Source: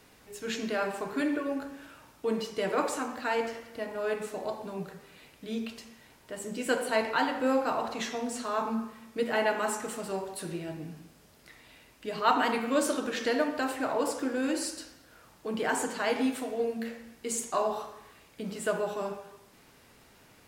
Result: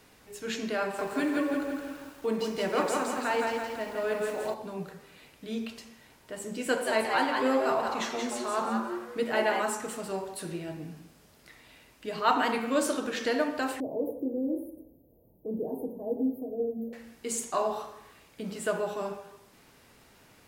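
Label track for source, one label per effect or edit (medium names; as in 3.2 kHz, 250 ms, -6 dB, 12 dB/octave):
0.820000	4.540000	bit-crushed delay 167 ms, feedback 55%, word length 9-bit, level -3 dB
6.680000	9.630000	frequency-shifting echo 178 ms, feedback 31%, per repeat +130 Hz, level -4.5 dB
13.800000	16.930000	inverse Chebyshev band-stop 1.3–7.8 kHz, stop band 50 dB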